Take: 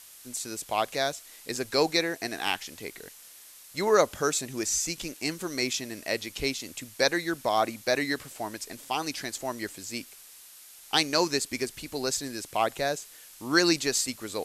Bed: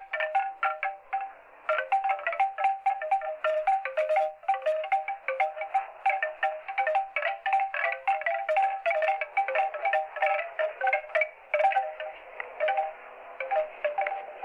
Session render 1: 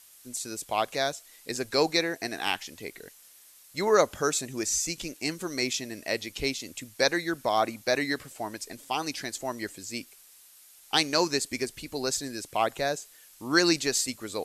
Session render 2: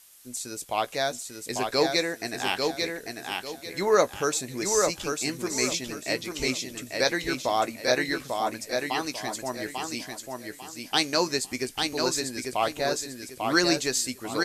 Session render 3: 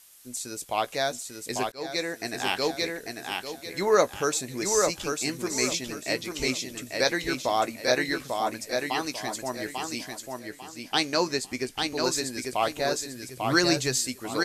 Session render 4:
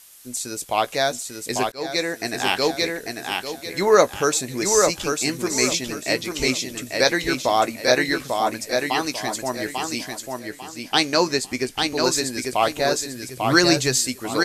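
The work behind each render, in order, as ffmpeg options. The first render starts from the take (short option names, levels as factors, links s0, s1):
-af "afftdn=nr=6:nf=-50"
-filter_complex "[0:a]asplit=2[s0][s1];[s1]adelay=16,volume=0.251[s2];[s0][s2]amix=inputs=2:normalize=0,aecho=1:1:845|1690|2535|3380:0.631|0.189|0.0568|0.017"
-filter_complex "[0:a]asettb=1/sr,asplit=3[s0][s1][s2];[s0]atrim=end=10.394[s3];[s1]atrim=start=10.39:end=12.04,asetpts=PTS-STARTPTS,afade=t=in:d=0.004:c=qsin,afade=t=out:st=1.646:d=0.004:c=qsin,highshelf=f=6400:g=-6.5[s4];[s2]atrim=start=12.036[s5];[s3][s4]acrossfade=d=0.004:c1=hsin:c2=qsin[s6];[s6][s5]acrossfade=d=0.004:c1=qsin:c2=hsin,asettb=1/sr,asplit=3[s7][s8][s9];[s7]atrim=end=13.154[s10];[s8]atrim=start=13.15:end=13.99,asetpts=PTS-STARTPTS,afade=t=in:d=0.004:c=qsin,afade=t=out:st=0.836:d=0.004:c=qsin,equalizer=f=130:t=o:w=0.26:g=13[s11];[s9]atrim=start=13.986[s12];[s10][s11]acrossfade=d=0.004:c1=hsin:c2=qsin[s13];[s13][s12]acrossfade=d=0.004:c1=qsin:c2=hsin,asplit=2[s14][s15];[s14]atrim=end=1.72,asetpts=PTS-STARTPTS,afade=t=out:st=1.716:d=0.004:c=hsin[s16];[s15]atrim=start=1.72,asetpts=PTS-STARTPTS,afade=t=in:d=0.63:c=qsin[s17];[s16][s17]concat=n=2:v=0:a=1"
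-af "volume=2"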